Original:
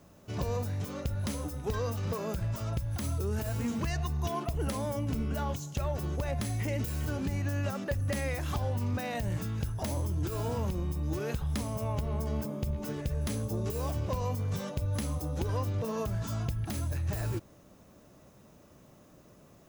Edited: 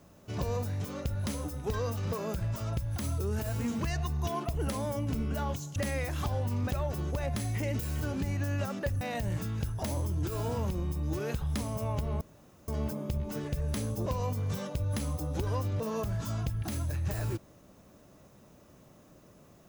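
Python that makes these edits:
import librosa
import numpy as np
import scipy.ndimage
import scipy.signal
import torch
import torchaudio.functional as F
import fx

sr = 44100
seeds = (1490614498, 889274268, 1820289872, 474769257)

y = fx.edit(x, sr, fx.move(start_s=8.06, length_s=0.95, to_s=5.76),
    fx.insert_room_tone(at_s=12.21, length_s=0.47),
    fx.cut(start_s=13.59, length_s=0.49), tone=tone)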